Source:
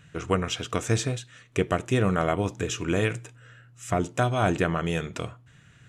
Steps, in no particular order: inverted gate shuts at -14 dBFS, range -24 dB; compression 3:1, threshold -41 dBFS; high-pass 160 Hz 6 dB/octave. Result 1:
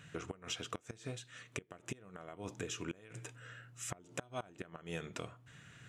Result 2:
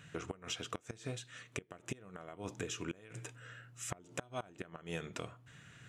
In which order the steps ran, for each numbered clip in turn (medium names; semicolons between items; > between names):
inverted gate > compression > high-pass; inverted gate > high-pass > compression